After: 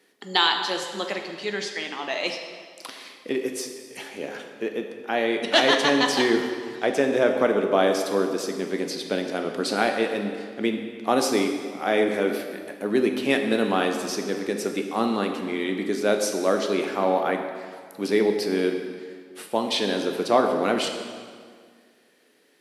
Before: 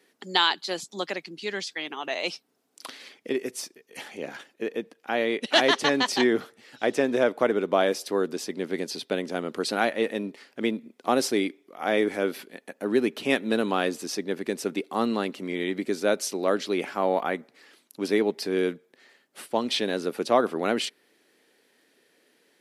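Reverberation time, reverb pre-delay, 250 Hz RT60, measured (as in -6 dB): 1.9 s, 11 ms, 2.0 s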